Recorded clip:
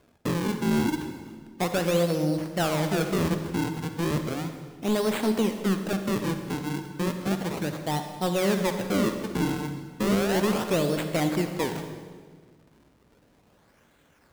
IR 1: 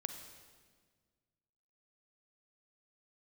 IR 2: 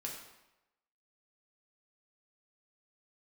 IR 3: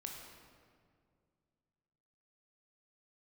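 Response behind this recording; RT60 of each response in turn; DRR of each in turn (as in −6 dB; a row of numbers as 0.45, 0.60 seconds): 1; 1.6, 0.95, 2.1 seconds; 6.5, −2.0, 0.5 decibels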